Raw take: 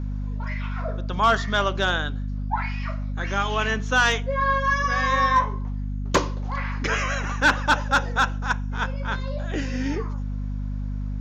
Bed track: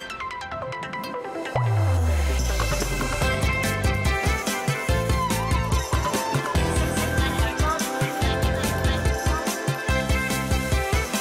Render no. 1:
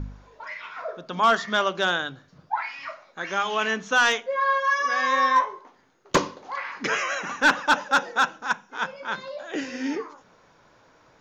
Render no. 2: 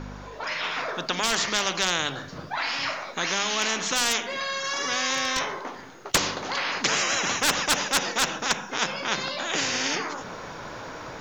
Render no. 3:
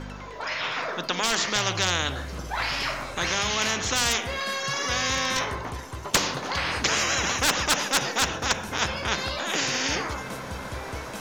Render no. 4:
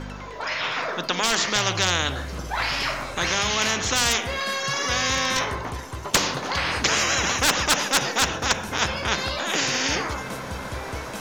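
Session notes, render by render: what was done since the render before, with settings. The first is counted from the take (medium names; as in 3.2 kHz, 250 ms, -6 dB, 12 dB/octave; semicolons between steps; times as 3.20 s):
de-hum 50 Hz, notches 5
level rider gain up to 7 dB; spectrum-flattening compressor 4:1
add bed track -14 dB
trim +2.5 dB; peak limiter -2 dBFS, peak gain reduction 1 dB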